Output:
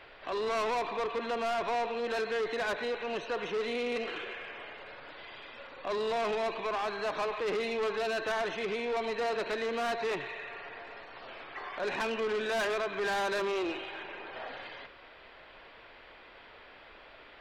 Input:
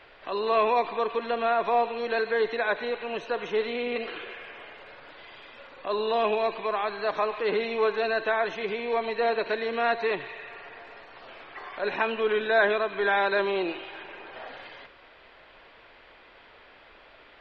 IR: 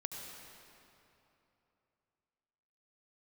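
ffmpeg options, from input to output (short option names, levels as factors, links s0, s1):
-af "asoftclip=type=tanh:threshold=0.0376"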